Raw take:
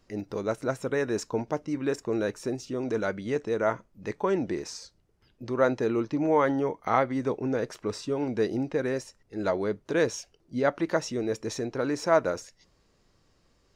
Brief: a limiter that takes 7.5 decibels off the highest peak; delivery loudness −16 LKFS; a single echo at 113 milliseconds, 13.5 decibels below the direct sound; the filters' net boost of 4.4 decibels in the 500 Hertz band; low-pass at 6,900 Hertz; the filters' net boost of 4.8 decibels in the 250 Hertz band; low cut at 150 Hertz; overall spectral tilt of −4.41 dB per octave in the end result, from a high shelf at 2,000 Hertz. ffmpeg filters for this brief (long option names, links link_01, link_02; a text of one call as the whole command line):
ffmpeg -i in.wav -af "highpass=150,lowpass=6900,equalizer=frequency=250:width_type=o:gain=5,equalizer=frequency=500:width_type=o:gain=4.5,highshelf=frequency=2000:gain=-6.5,alimiter=limit=-14dB:level=0:latency=1,aecho=1:1:113:0.211,volume=10dB" out.wav